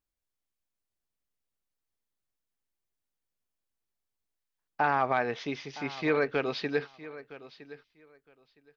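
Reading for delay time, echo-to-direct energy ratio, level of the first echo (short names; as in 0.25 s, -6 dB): 0.963 s, -17.0 dB, -17.0 dB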